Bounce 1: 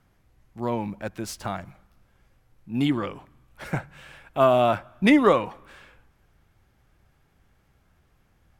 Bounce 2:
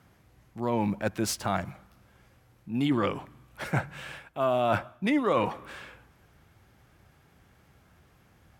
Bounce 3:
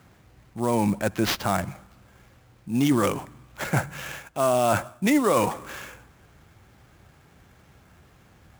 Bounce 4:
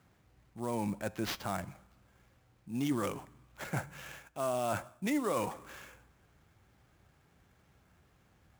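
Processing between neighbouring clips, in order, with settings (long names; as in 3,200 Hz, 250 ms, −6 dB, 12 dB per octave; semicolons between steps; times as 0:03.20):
high-pass filter 72 Hz; reversed playback; downward compressor 8 to 1, threshold −28 dBFS, peak gain reduction 15 dB; reversed playback; level +5.5 dB
in parallel at +1 dB: brickwall limiter −18.5 dBFS, peak gain reduction 7 dB; on the sum: sample-rate reduction 9,100 Hz, jitter 20%; level −1 dB
tuned comb filter 59 Hz, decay 0.53 s, harmonics odd, mix 30%; level −9 dB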